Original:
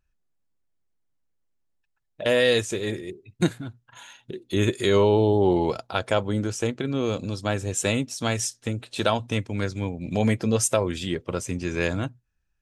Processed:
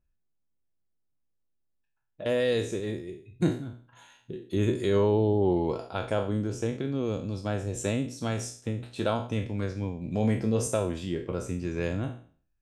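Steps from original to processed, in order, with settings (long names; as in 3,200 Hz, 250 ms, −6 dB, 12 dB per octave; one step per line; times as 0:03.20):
peak hold with a decay on every bin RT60 0.45 s
tilt shelving filter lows +5 dB, about 900 Hz
level −8 dB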